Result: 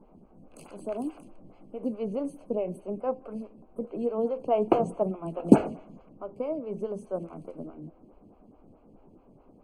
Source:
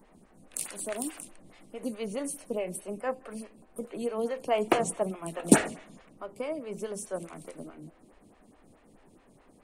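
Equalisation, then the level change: running mean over 24 samples; +4.0 dB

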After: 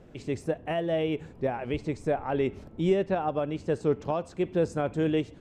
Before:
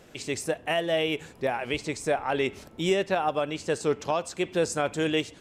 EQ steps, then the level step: tilt -4 dB/oct; low shelf 100 Hz -7.5 dB; -4.5 dB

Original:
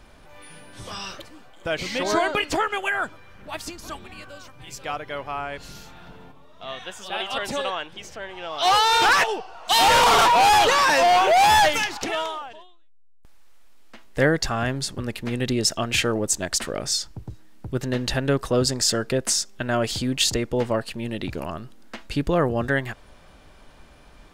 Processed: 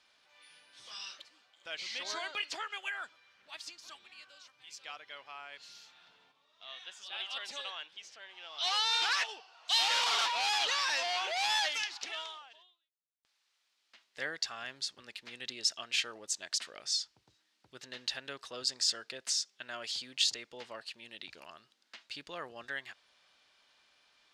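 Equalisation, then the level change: band-pass 4500 Hz, Q 1.3; high shelf 4500 Hz -7 dB; -2.5 dB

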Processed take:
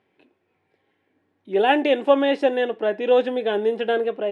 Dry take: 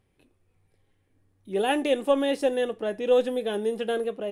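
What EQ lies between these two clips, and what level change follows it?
BPF 310–2800 Hz; bell 510 Hz -5 dB 0.27 oct; notch 1200 Hz, Q 8.8; +8.5 dB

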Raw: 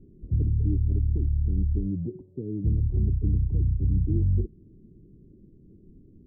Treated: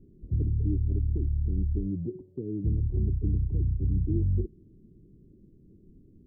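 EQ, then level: dynamic EQ 360 Hz, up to +4 dB, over -48 dBFS, Q 2.2; -3.0 dB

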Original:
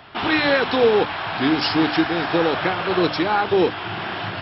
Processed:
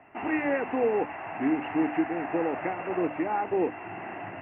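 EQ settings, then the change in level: rippled Chebyshev low-pass 2800 Hz, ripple 9 dB; bell 280 Hz +9.5 dB 0.82 oct; -7.0 dB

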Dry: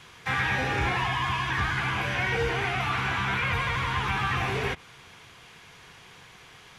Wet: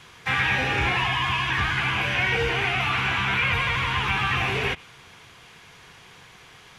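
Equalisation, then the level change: dynamic EQ 2700 Hz, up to +7 dB, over -45 dBFS, Q 2; +1.5 dB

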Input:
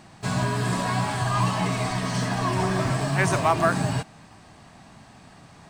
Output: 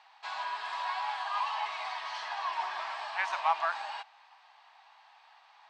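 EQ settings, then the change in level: resonant high-pass 860 Hz, resonance Q 4.9; LPF 3700 Hz 24 dB/oct; differentiator; +2.5 dB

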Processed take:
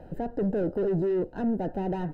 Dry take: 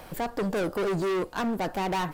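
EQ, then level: running mean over 39 samples; +3.0 dB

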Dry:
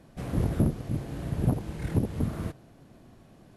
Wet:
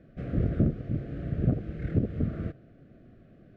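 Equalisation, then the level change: Butterworth band-stop 930 Hz, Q 1.5; LPF 1900 Hz 12 dB/oct; 0.0 dB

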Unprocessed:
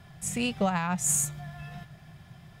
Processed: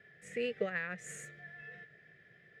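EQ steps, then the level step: double band-pass 920 Hz, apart 2 oct; +5.5 dB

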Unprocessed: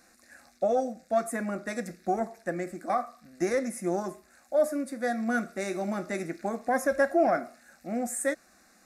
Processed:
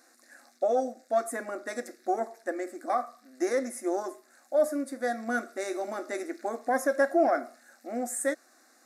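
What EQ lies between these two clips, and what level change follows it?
brick-wall FIR high-pass 230 Hz; bell 2500 Hz -7 dB 0.36 oct; 0.0 dB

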